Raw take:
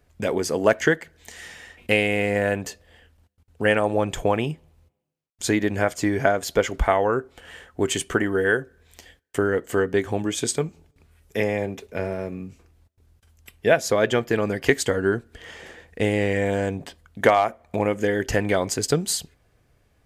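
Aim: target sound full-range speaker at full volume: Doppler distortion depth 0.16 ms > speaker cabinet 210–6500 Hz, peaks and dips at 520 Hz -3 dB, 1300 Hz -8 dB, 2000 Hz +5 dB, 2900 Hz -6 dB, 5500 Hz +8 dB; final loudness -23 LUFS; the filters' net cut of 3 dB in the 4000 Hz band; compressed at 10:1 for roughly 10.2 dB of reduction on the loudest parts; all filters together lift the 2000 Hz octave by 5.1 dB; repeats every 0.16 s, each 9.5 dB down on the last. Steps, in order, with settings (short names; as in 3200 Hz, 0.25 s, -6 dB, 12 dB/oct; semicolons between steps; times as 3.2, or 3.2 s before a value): bell 2000 Hz +6.5 dB; bell 4000 Hz -6.5 dB; compressor 10:1, threshold -22 dBFS; feedback echo 0.16 s, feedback 33%, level -9.5 dB; Doppler distortion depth 0.16 ms; speaker cabinet 210–6500 Hz, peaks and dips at 520 Hz -3 dB, 1300 Hz -8 dB, 2000 Hz +5 dB, 2900 Hz -6 dB, 5500 Hz +8 dB; gain +6.5 dB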